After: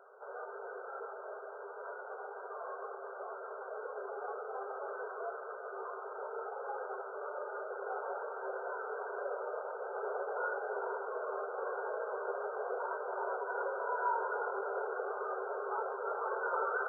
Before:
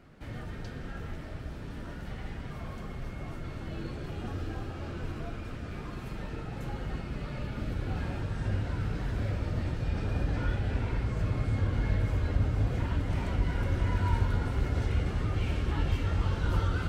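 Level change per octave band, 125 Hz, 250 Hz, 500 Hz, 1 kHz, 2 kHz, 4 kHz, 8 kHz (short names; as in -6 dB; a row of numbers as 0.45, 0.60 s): under -40 dB, under -15 dB, +4.0 dB, +5.0 dB, +0.5 dB, under -35 dB, n/a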